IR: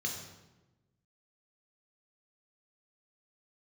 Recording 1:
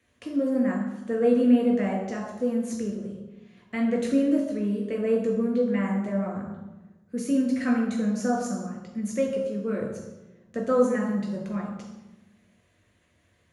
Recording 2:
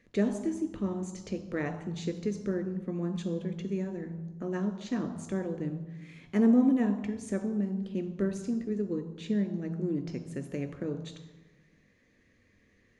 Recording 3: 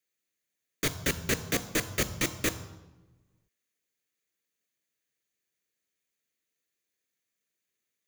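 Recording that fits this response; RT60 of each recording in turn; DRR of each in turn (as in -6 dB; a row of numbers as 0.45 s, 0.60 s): 1; 1.1 s, 1.1 s, 1.1 s; -0.5 dB, 8.0 dB, 12.5 dB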